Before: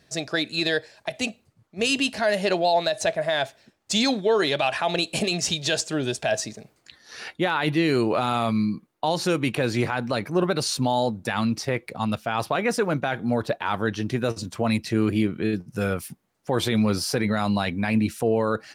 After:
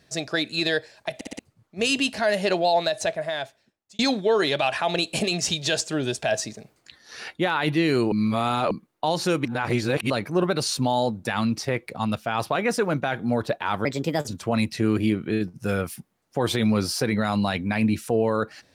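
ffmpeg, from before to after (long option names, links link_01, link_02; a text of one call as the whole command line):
ffmpeg -i in.wav -filter_complex "[0:a]asplit=12[link_01][link_02][link_03][link_04][link_05][link_06][link_07][link_08][link_09][link_10][link_11][link_12];[link_01]atrim=end=1.212[link_13];[link_02]atrim=start=1.148:end=1.212[link_14];[link_03]atrim=start=1.148:end=1.212[link_15];[link_04]atrim=start=1.148:end=1.212[link_16];[link_05]atrim=start=1.388:end=3.99,asetpts=PTS-STARTPTS,afade=type=out:start_time=1.472:duration=1.13[link_17];[link_06]atrim=start=3.99:end=8.122,asetpts=PTS-STARTPTS,afade=type=in:duration=0.004:curve=hsin[link_18];[link_07]atrim=start=8.118:end=8.712,asetpts=PTS-STARTPTS,areverse[link_19];[link_08]atrim=start=8.708:end=9.452[link_20];[link_09]atrim=start=9.448:end=10.102,asetpts=PTS-STARTPTS,areverse[link_21];[link_10]atrim=start=10.098:end=13.854[link_22];[link_11]atrim=start=13.85:end=14.4,asetpts=PTS-STARTPTS,asetrate=56889,aresample=44100,atrim=end_sample=18802,asetpts=PTS-STARTPTS[link_23];[link_12]atrim=start=14.396[link_24];[link_13][link_14]acrossfade=duration=0.004:curve1=hsin:curve2=hsin[link_25];[link_25][link_15]acrossfade=duration=0.004:curve1=hsin:curve2=hsin[link_26];[link_26][link_16]acrossfade=duration=0.004:curve1=hsin:curve2=hsin[link_27];[link_17][link_18]concat=n=2:v=0:a=1[link_28];[link_27][link_28]acrossfade=duration=0.004:curve1=hsin:curve2=hsin[link_29];[link_29][link_19]acrossfade=duration=0.004:curve1=hsin:curve2=hsin[link_30];[link_30][link_20]acrossfade=duration=0.004:curve1=hsin:curve2=hsin[link_31];[link_31][link_21]acrossfade=duration=0.004:curve1=hsin:curve2=hsin[link_32];[link_32][link_22]acrossfade=duration=0.004:curve1=hsin:curve2=hsin[link_33];[link_33][link_23]acrossfade=duration=0.004:curve1=hsin:curve2=hsin[link_34];[link_34][link_24]acrossfade=duration=0.004:curve1=hsin:curve2=hsin" out.wav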